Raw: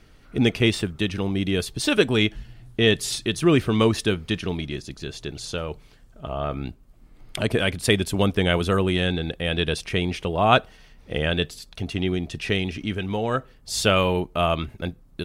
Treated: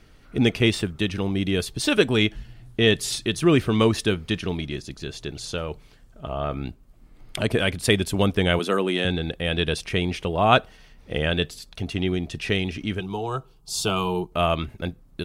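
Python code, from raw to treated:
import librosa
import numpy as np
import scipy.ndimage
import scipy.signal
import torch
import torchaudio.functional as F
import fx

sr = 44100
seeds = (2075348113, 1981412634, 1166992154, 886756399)

y = fx.highpass(x, sr, hz=200.0, slope=24, at=(8.59, 9.05))
y = fx.fixed_phaser(y, sr, hz=370.0, stages=8, at=(13.0, 14.32))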